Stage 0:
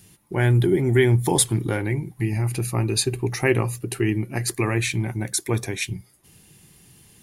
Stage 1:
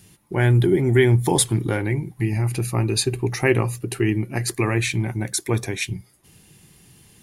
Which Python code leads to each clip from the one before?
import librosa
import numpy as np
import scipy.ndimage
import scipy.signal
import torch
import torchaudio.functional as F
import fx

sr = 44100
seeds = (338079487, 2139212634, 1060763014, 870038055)

y = fx.high_shelf(x, sr, hz=9200.0, db=-4.0)
y = F.gain(torch.from_numpy(y), 1.5).numpy()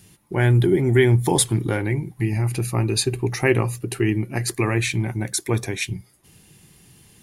y = x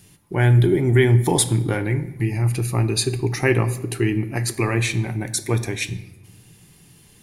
y = fx.room_shoebox(x, sr, seeds[0], volume_m3=410.0, walls='mixed', distance_m=0.34)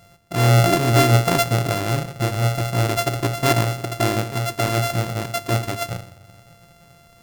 y = np.r_[np.sort(x[:len(x) // 64 * 64].reshape(-1, 64), axis=1).ravel(), x[len(x) // 64 * 64:]]